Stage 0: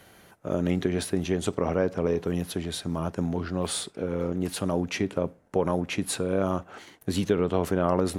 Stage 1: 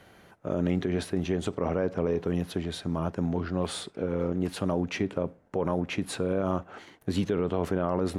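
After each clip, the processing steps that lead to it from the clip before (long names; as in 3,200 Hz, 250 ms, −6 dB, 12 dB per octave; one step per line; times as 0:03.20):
low-pass filter 3,200 Hz 6 dB per octave
brickwall limiter −17 dBFS, peak gain reduction 6 dB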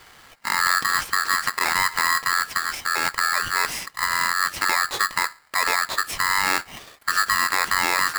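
ring modulator with a square carrier 1,500 Hz
level +6 dB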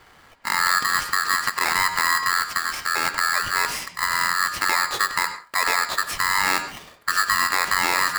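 convolution reverb RT60 0.30 s, pre-delay 83 ms, DRR 9.5 dB
one half of a high-frequency compander decoder only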